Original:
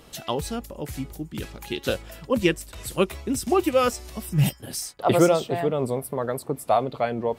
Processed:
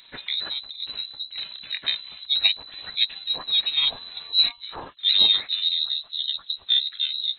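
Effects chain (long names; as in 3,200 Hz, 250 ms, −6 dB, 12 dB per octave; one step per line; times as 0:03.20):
pitch shift by two crossfaded delay taps −9.5 semitones
voice inversion scrambler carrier 4,000 Hz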